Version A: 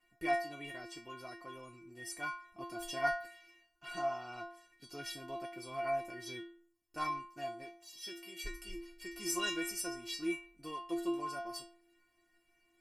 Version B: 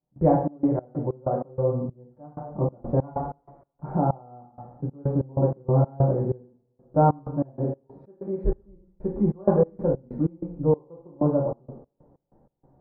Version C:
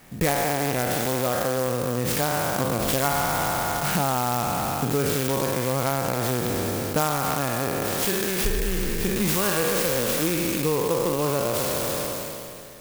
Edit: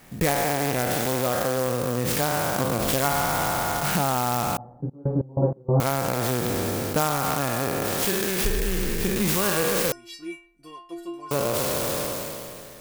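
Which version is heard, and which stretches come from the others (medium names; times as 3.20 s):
C
4.57–5.80 s: from B
9.92–11.31 s: from A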